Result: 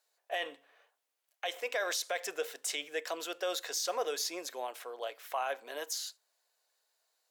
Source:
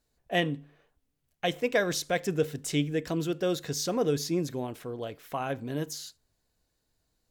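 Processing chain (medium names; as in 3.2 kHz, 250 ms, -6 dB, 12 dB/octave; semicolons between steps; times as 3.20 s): high-pass 580 Hz 24 dB/octave; peak limiter -26 dBFS, peak gain reduction 11.5 dB; trim +2 dB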